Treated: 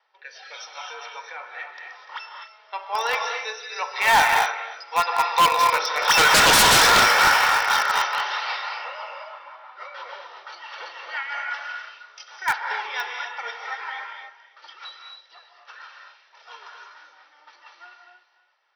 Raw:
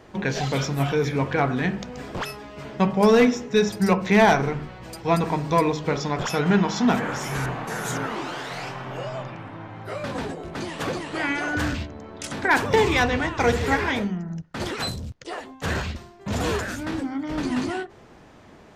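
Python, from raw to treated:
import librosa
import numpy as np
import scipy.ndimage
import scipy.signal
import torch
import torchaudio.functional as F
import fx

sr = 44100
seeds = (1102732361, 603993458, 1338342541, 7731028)

p1 = fx.doppler_pass(x, sr, speed_mps=9, closest_m=3.1, pass_at_s=6.71)
p2 = scipy.signal.sosfilt(scipy.signal.cheby2(4, 60, 230.0, 'highpass', fs=sr, output='sos'), p1)
p3 = p2 + 0.43 * np.pad(p2, (int(2.2 * sr / 1000.0), 0))[:len(p2)]
p4 = p3 + fx.echo_feedback(p3, sr, ms=294, feedback_pct=28, wet_db=-11, dry=0)
p5 = fx.noise_reduce_blind(p4, sr, reduce_db=6)
p6 = fx.rotary_switch(p5, sr, hz=0.9, then_hz=6.0, switch_at_s=7.21)
p7 = scipy.signal.sosfilt(scipy.signal.cheby1(8, 1.0, 5800.0, 'lowpass', fs=sr, output='sos'), p6)
p8 = fx.rev_gated(p7, sr, seeds[0], gate_ms=280, shape='rising', drr_db=2.5)
p9 = fx.quant_dither(p8, sr, seeds[1], bits=6, dither='none')
p10 = p8 + (p9 * 10.0 ** (-4.5 / 20.0))
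p11 = fx.fold_sine(p10, sr, drive_db=15, ceiling_db=-13.5)
y = p11 * 10.0 ** (2.5 / 20.0)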